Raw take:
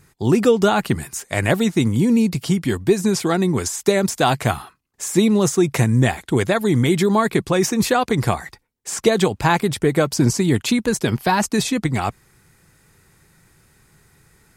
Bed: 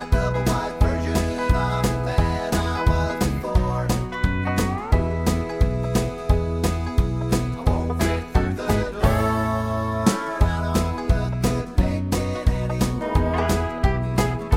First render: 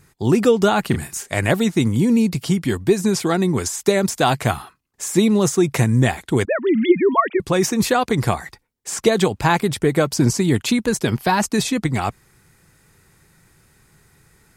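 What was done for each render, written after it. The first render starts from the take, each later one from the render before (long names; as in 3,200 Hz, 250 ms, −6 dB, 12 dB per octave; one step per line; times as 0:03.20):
0:00.88–0:01.29: double-tracking delay 35 ms −7 dB
0:06.45–0:07.40: three sine waves on the formant tracks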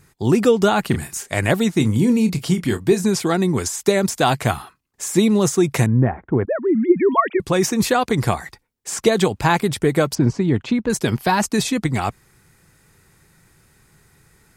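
0:01.74–0:03.04: double-tracking delay 28 ms −10.5 dB
0:05.86–0:07.00: Bessel low-pass filter 1,100 Hz, order 6
0:10.15–0:10.90: head-to-tape spacing loss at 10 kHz 26 dB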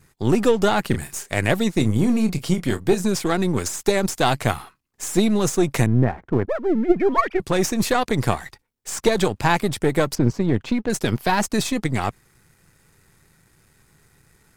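gain on one half-wave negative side −7 dB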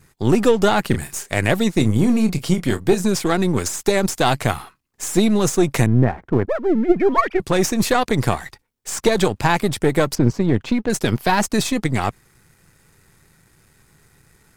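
level +2.5 dB
brickwall limiter −3 dBFS, peak gain reduction 2.5 dB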